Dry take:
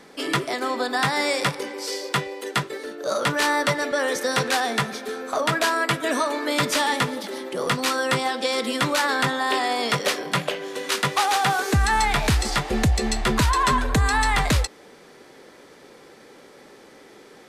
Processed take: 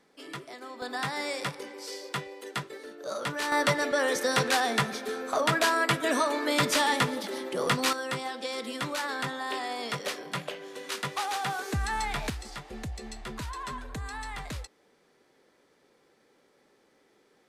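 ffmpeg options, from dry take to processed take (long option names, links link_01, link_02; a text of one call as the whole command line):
ffmpeg -i in.wav -af "asetnsamples=nb_out_samples=441:pad=0,asendcmd='0.82 volume volume -10dB;3.52 volume volume -3dB;7.93 volume volume -10.5dB;12.3 volume volume -17.5dB',volume=-17dB" out.wav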